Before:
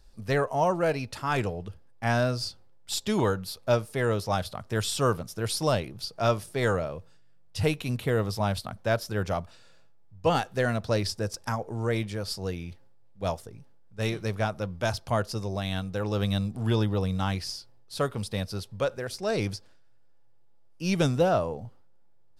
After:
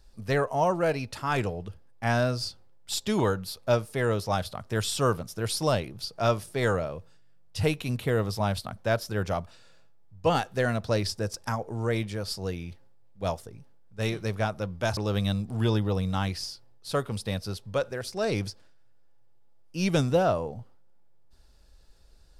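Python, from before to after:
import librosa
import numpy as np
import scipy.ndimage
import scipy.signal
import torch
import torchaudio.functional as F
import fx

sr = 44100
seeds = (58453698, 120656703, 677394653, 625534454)

y = fx.edit(x, sr, fx.cut(start_s=14.97, length_s=1.06), tone=tone)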